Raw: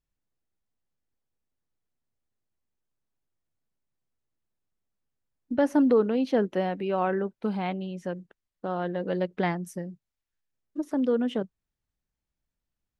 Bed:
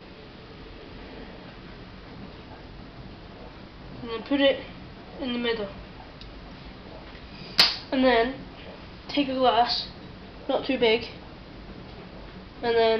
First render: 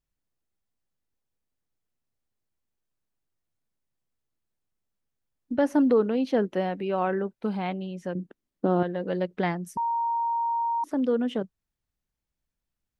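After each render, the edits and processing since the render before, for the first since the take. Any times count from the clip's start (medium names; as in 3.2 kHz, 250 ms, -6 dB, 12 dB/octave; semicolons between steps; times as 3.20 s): 8.15–8.83 s: peaking EQ 270 Hz +15 dB 1.6 oct; 9.77–10.84 s: bleep 931 Hz -23.5 dBFS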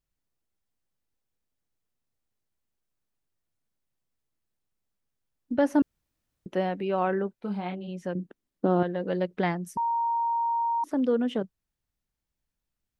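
5.82–6.46 s: room tone; 7.40–7.87 s: detune thickener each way 16 cents -> 32 cents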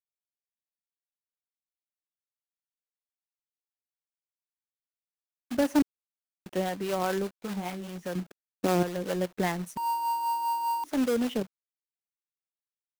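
companded quantiser 4-bit; harmonic tremolo 5 Hz, depth 50%, crossover 490 Hz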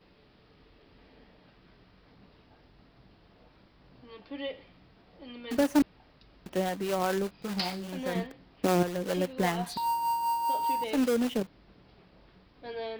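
add bed -16 dB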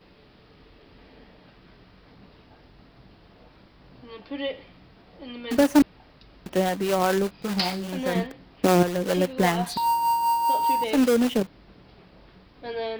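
trim +6.5 dB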